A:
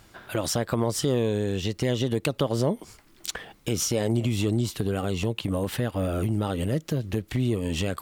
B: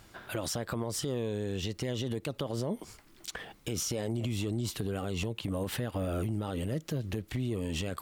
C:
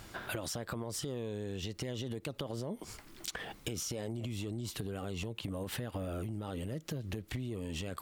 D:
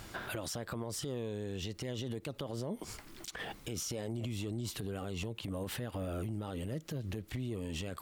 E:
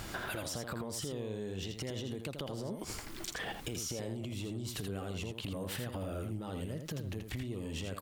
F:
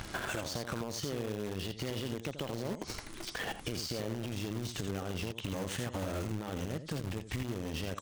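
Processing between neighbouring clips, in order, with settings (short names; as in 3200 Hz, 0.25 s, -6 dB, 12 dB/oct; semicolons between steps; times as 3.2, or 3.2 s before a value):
limiter -22.5 dBFS, peak gain reduction 10 dB; gain -2 dB
compressor 6:1, threshold -41 dBFS, peak gain reduction 12 dB; gain +5 dB
limiter -32 dBFS, peak gain reduction 12 dB; gain +2 dB
compressor, threshold -42 dBFS, peak gain reduction 8 dB; echo 82 ms -6.5 dB; gain +5.5 dB
nonlinear frequency compression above 3100 Hz 1.5:1; in parallel at -4.5 dB: bit-crush 6-bit; on the sum: gain -1.5 dB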